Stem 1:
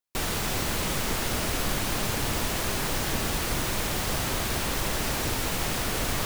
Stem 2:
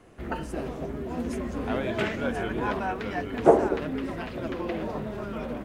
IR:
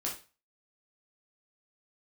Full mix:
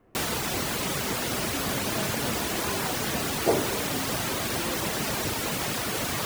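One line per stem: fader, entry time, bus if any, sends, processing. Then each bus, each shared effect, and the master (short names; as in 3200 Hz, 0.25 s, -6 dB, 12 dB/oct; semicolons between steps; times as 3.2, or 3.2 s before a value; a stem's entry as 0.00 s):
+2.0 dB, 0.00 s, no send, HPF 110 Hz 12 dB/oct; reverb removal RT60 0.69 s
-9.0 dB, 0.00 s, send -8.5 dB, Bessel low-pass 1900 Hz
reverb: on, RT60 0.35 s, pre-delay 6 ms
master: dry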